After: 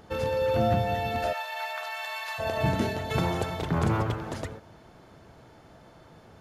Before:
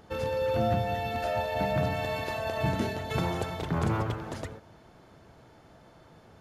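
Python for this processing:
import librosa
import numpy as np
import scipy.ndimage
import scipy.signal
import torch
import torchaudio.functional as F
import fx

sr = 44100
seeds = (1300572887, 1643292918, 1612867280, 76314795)

y = fx.highpass(x, sr, hz=920.0, slope=24, at=(1.32, 2.38), fade=0.02)
y = fx.dmg_crackle(y, sr, seeds[0], per_s=110.0, level_db=-59.0, at=(3.24, 3.91), fade=0.02)
y = y * librosa.db_to_amplitude(2.5)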